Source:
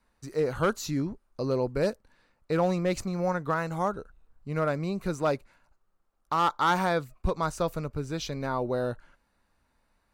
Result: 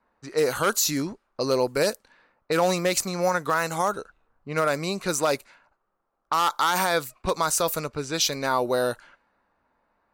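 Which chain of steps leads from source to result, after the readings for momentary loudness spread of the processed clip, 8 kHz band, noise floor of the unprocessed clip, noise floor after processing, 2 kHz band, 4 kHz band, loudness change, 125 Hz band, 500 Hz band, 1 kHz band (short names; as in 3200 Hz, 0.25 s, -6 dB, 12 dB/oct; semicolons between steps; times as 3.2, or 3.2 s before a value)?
8 LU, +16.5 dB, -73 dBFS, -75 dBFS, +6.5 dB, +11.5 dB, +4.5 dB, -2.5 dB, +4.0 dB, +4.0 dB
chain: RIAA curve recording; limiter -19.5 dBFS, peak gain reduction 9.5 dB; low-pass opened by the level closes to 1100 Hz, open at -30 dBFS; gain +8 dB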